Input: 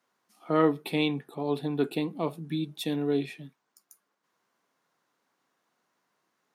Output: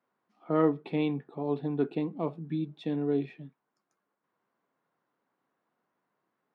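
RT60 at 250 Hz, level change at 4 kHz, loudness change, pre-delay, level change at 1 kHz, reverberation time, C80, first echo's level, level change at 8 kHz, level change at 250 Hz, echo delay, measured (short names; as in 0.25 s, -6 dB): none, -12.5 dB, -1.5 dB, none, -4.0 dB, none, none, none, under -25 dB, -1.0 dB, none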